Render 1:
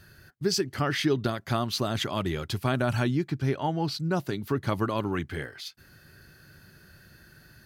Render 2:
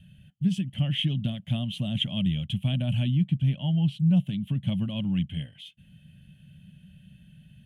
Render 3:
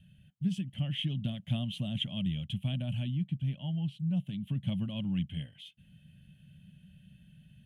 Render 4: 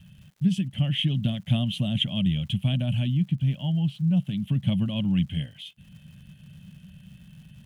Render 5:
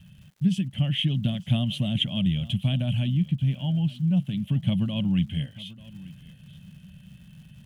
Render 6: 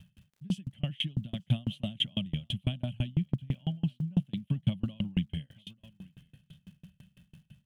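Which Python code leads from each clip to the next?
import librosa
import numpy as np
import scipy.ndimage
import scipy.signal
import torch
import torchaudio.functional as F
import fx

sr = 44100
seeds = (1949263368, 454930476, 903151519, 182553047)

y1 = fx.curve_eq(x, sr, hz=(100.0, 190.0, 400.0, 580.0, 1300.0, 2200.0, 3100.0, 4600.0, 9700.0, 14000.0), db=(0, 11, -26, -9, -27, -9, 9, -28, -7, -24))
y2 = fx.rider(y1, sr, range_db=10, speed_s=0.5)
y2 = y2 * 10.0 ** (-7.0 / 20.0)
y3 = fx.dmg_crackle(y2, sr, seeds[0], per_s=220.0, level_db=-58.0)
y3 = y3 * 10.0 ** (8.5 / 20.0)
y4 = y3 + 10.0 ** (-19.5 / 20.0) * np.pad(y3, (int(889 * sr / 1000.0), 0))[:len(y3)]
y5 = fx.tremolo_decay(y4, sr, direction='decaying', hz=6.0, depth_db=33)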